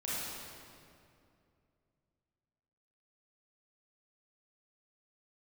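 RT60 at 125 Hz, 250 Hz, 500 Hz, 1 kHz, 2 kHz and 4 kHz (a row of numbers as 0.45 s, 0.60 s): 3.3 s, 2.9 s, 2.7 s, 2.3 s, 2.0 s, 1.7 s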